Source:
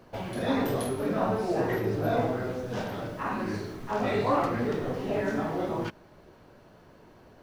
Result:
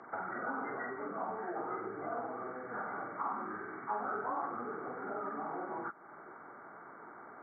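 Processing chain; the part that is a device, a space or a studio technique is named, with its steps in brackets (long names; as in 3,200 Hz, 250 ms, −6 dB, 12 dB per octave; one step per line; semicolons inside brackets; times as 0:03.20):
hearing aid with frequency lowering (hearing-aid frequency compression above 1,100 Hz 4 to 1; downward compressor 3 to 1, threshold −43 dBFS, peak gain reduction 16.5 dB; loudspeaker in its box 310–6,500 Hz, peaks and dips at 550 Hz −7 dB, 820 Hz +7 dB, 1,400 Hz +9 dB, 2,300 Hz −5 dB)
level +2.5 dB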